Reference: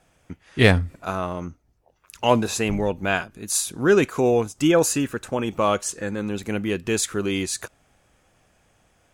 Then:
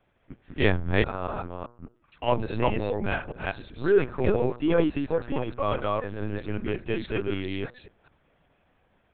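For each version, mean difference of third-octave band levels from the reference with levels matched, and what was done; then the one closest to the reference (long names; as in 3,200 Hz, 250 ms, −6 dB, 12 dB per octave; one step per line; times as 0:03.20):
10.0 dB: delay that plays each chunk backwards 207 ms, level −0.5 dB
low-pass filter 3,000 Hz 6 dB per octave
hum removal 119.1 Hz, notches 14
linear-prediction vocoder at 8 kHz pitch kept
level −6 dB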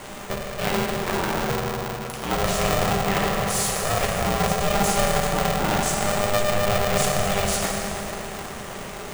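16.5 dB: compressor on every frequency bin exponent 0.6
reversed playback
downward compressor 6 to 1, threshold −25 dBFS, peak gain reduction 16.5 dB
reversed playback
feedback delay network reverb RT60 4 s, high-frequency decay 0.55×, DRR −3.5 dB
ring modulator with a square carrier 300 Hz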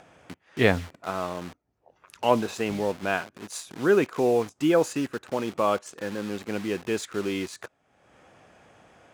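5.0 dB: spectral tilt −3.5 dB per octave
in parallel at −4.5 dB: bit reduction 5 bits
on the sum: meter weighting curve A
upward compression, threshold −33 dBFS
level −7 dB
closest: third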